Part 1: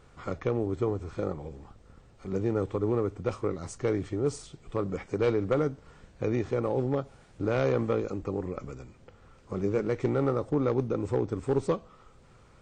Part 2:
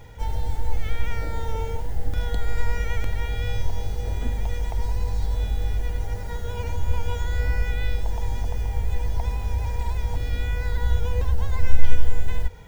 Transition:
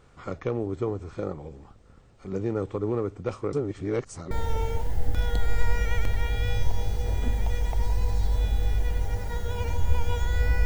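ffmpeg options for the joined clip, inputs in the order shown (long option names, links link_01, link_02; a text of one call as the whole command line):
ffmpeg -i cue0.wav -i cue1.wav -filter_complex "[0:a]apad=whole_dur=10.65,atrim=end=10.65,asplit=2[link_01][link_02];[link_01]atrim=end=3.532[link_03];[link_02]atrim=start=3.528:end=4.312,asetpts=PTS-STARTPTS,areverse[link_04];[1:a]atrim=start=1.298:end=7.64[link_05];[link_03][link_04]acrossfade=duration=0.004:curve1=hsin:curve2=hsin[link_06];[link_06][link_05]acrossfade=duration=0.004:curve1=hsin:curve2=hsin" out.wav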